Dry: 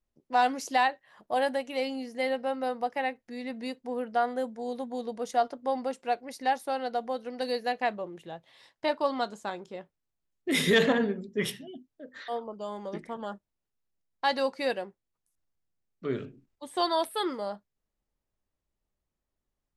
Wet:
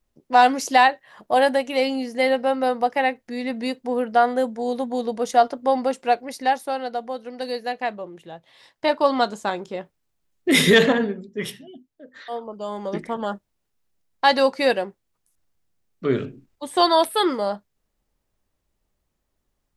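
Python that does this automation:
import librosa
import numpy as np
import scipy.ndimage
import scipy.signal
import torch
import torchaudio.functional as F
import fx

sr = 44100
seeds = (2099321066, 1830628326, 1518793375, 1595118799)

y = fx.gain(x, sr, db=fx.line((6.09, 9.5), (7.04, 2.5), (8.32, 2.5), (9.15, 10.0), (10.59, 10.0), (11.27, 1.0), (12.15, 1.0), (13.0, 10.0)))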